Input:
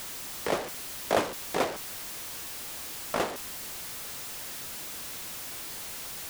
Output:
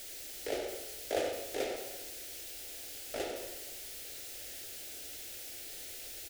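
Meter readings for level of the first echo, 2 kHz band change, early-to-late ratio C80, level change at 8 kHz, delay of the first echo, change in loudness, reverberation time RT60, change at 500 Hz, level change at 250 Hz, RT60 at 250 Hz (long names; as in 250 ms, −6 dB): −8.5 dB, −8.5 dB, 4.5 dB, −6.0 dB, 96 ms, −6.5 dB, 1.2 s, −5.0 dB, −8.0 dB, 1.2 s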